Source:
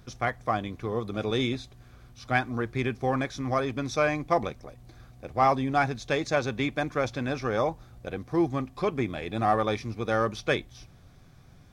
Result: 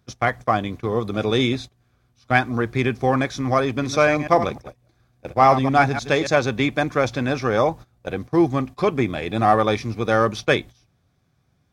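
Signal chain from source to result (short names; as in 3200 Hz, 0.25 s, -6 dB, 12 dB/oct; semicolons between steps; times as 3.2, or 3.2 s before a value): 3.67–6.27 reverse delay 0.101 s, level -10 dB; gate -40 dBFS, range -18 dB; HPF 61 Hz; gain +7.5 dB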